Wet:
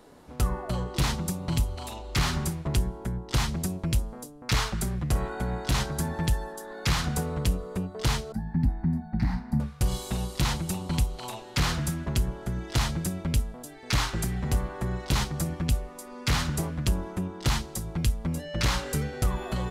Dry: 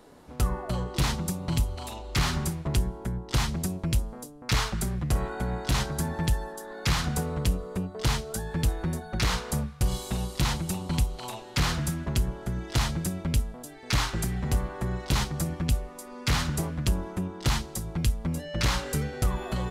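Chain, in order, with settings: 8.32–9.60 s: FFT filter 110 Hz 0 dB, 260 Hz +9 dB, 460 Hz -26 dB, 790 Hz -1 dB, 1.2 kHz -16 dB, 1.9 kHz -7 dB, 3.2 kHz -27 dB, 4.6 kHz -15 dB, 6.7 kHz -28 dB, 13 kHz -21 dB

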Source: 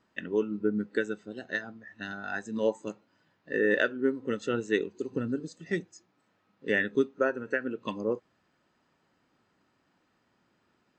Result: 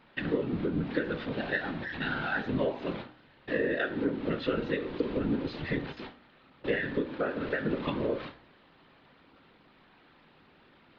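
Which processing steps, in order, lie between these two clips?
jump at every zero crossing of -35 dBFS; high-pass 42 Hz; gate with hold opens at -35 dBFS; steep low-pass 4.1 kHz 48 dB/octave; compression 10:1, threshold -28 dBFS, peak gain reduction 10 dB; whisper effect; de-hum 60.98 Hz, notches 32; reverberation, pre-delay 3 ms, DRR 13 dB; trim +2.5 dB

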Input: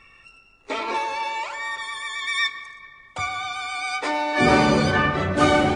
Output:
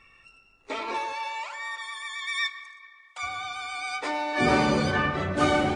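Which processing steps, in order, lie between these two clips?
1.12–3.22 s: high-pass 530 Hz -> 1.1 kHz 12 dB/octave; trim -5 dB

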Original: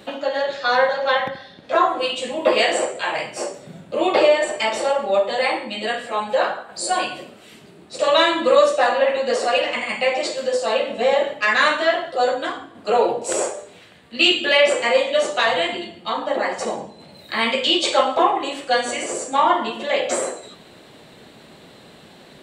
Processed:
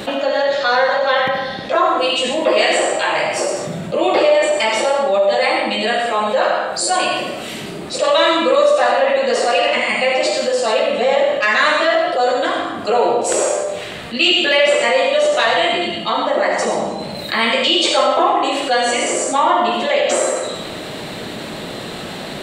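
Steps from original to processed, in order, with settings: on a send at -4 dB: reverberation RT60 0.50 s, pre-delay 35 ms; on the sum: level flattener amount 50%; trim -2 dB

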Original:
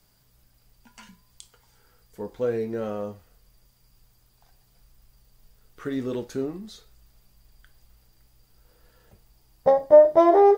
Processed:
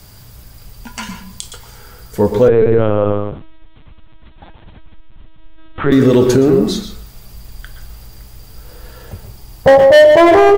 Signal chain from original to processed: hard clipper -17 dBFS, distortion -7 dB; peaking EQ 89 Hz +8.5 dB 0.88 oct; delay 149 ms -22 dB; reverberation RT60 0.35 s, pre-delay 114 ms, DRR 7 dB; 2.48–5.92 s: LPC vocoder at 8 kHz pitch kept; loudness maximiser +22 dB; trim -1 dB

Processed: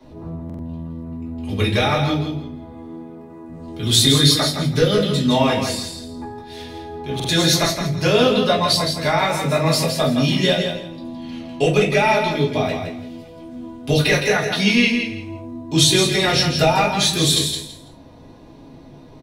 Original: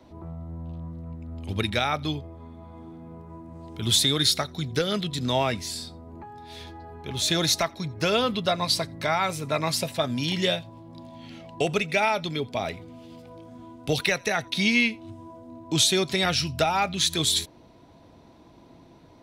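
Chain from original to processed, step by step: 2.71–3.48 s: high-pass 190 Hz -> 410 Hz 6 dB/octave; feedback delay 165 ms, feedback 22%, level -6.5 dB; reverberation RT60 0.35 s, pre-delay 3 ms, DRR -5 dB; buffer glitch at 0.45/7.15 s, samples 2048, times 2; trim -1 dB

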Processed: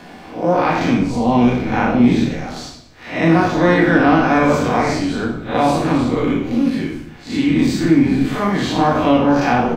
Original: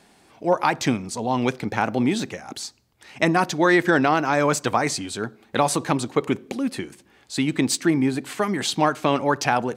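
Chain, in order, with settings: spectral blur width 127 ms; peaking EQ 9.5 kHz -14 dB 0.97 oct; on a send: frequency-shifting echo 90 ms, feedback 38%, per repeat -62 Hz, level -12 dB; on the sum: simulated room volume 260 m³, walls furnished, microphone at 1.9 m; three bands compressed up and down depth 40%; trim +5 dB

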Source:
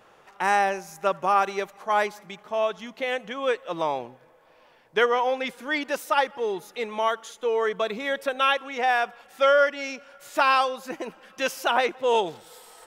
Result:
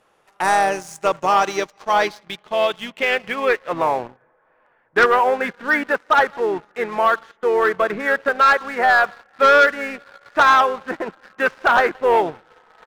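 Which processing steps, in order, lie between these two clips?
harmony voices -4 st -12 dB; low-pass sweep 11 kHz -> 1.6 kHz, 0.48–4.02 s; waveshaping leveller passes 2; trim -2 dB

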